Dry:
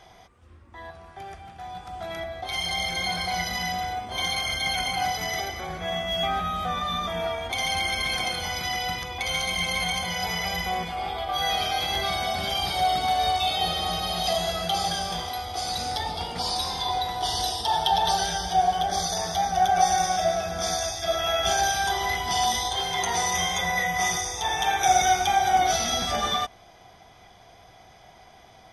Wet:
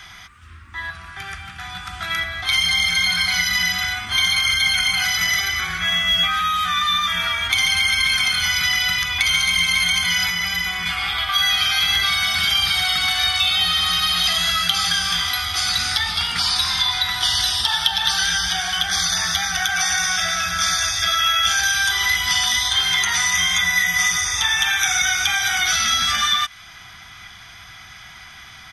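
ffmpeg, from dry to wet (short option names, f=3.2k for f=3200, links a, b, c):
-filter_complex "[0:a]asettb=1/sr,asplit=3[a][b][c];[a]atrim=end=10.294[d];[b]atrim=start=10.29:end=10.86,asetpts=PTS-STARTPTS,afade=t=in:d=0.004:c=qsin,afade=t=out:st=0.566:d=0.004:c=qsin,acrossover=split=180|780[e][f][g];[e]acompressor=threshold=-44dB:ratio=4[h];[f]acompressor=threshold=-37dB:ratio=4[i];[g]acompressor=threshold=-36dB:ratio=4[j];[h][i][j]amix=inputs=3:normalize=0[k];[c]atrim=start=10.856[l];[d][k]acrossfade=d=0.004:c1=hsin:c2=qsin[m];[m][l]acrossfade=d=0.004:c1=qsin:c2=hsin,firequalizer=gain_entry='entry(170,0);entry(540,-16);entry(1300,13);entry(4900,9)':delay=0.05:min_phase=1,acrossover=split=1200|3200[n][o][p];[n]acompressor=threshold=-38dB:ratio=4[q];[o]acompressor=threshold=-27dB:ratio=4[r];[p]acompressor=threshold=-27dB:ratio=4[s];[q][r][s]amix=inputs=3:normalize=0,equalizer=f=74:t=o:w=1.9:g=4,volume=5dB"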